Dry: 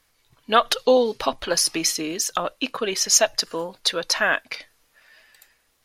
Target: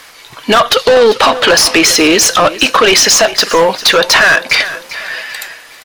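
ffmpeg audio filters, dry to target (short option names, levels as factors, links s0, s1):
-filter_complex "[0:a]asplit=2[s0][s1];[s1]acompressor=threshold=0.0501:ratio=6,volume=1.41[s2];[s0][s2]amix=inputs=2:normalize=0,asettb=1/sr,asplit=3[s3][s4][s5];[s3]atrim=end=1.124[s6];[s4]atrim=start=1.12:end=2.06,asetpts=PTS-STARTPTS,afade=t=in:d=0.004:c=qsin,afade=t=out:st=0.936:d=0.004:c=qsin,bass=f=250:g=-4,treble=f=4000:g=-4[s7];[s5]atrim=start=2.056[s8];[s6][s7]acrossfade=d=0.004:c1=hsin:c2=qsin[s9];[s9][s8]acrossfade=d=0.004:c1=qsin:c2=hsin,asplit=2[s10][s11];[s11]highpass=f=720:p=1,volume=20,asoftclip=type=tanh:threshold=0.944[s12];[s10][s12]amix=inputs=2:normalize=0,lowpass=f=4200:p=1,volume=0.501,aecho=1:1:398|796|1194:0.133|0.056|0.0235,alimiter=level_in=1.88:limit=0.891:release=50:level=0:latency=1,volume=0.891"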